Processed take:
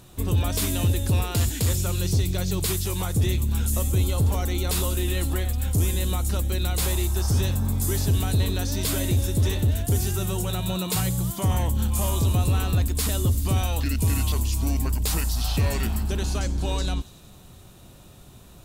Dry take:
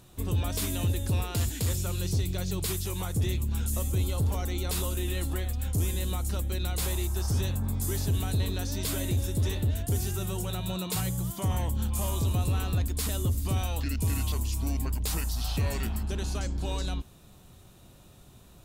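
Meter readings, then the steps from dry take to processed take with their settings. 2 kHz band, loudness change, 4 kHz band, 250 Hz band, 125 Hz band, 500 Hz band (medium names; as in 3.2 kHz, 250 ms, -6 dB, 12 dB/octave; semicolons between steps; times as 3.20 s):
+5.5 dB, +5.5 dB, +5.5 dB, +5.5 dB, +5.5 dB, +5.5 dB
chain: feedback echo behind a high-pass 93 ms, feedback 71%, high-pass 3.9 kHz, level -15 dB; trim +5.5 dB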